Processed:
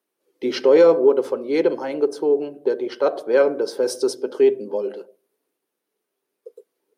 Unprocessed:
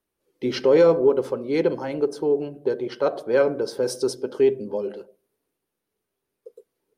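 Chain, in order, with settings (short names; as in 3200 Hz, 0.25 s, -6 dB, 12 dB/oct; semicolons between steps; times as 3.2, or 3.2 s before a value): Chebyshev high-pass 320 Hz, order 2; gain +3 dB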